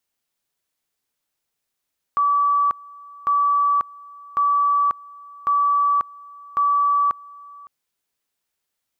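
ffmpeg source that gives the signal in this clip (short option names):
-f lavfi -i "aevalsrc='pow(10,(-15-23.5*gte(mod(t,1.1),0.54))/20)*sin(2*PI*1150*t)':d=5.5:s=44100"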